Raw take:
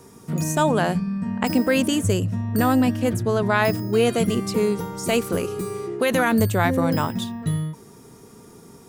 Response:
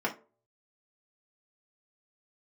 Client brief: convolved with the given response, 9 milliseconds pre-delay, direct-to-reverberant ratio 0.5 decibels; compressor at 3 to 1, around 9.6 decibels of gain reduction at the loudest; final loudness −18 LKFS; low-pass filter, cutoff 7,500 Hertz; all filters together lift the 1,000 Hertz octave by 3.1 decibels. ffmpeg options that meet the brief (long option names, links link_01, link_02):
-filter_complex "[0:a]lowpass=7500,equalizer=frequency=1000:width_type=o:gain=4,acompressor=threshold=-27dB:ratio=3,asplit=2[link_01][link_02];[1:a]atrim=start_sample=2205,adelay=9[link_03];[link_02][link_03]afir=irnorm=-1:irlink=0,volume=-9dB[link_04];[link_01][link_04]amix=inputs=2:normalize=0,volume=7.5dB"